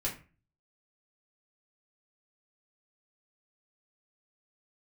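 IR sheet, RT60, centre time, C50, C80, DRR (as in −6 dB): 0.35 s, 22 ms, 10.0 dB, 15.5 dB, −5.0 dB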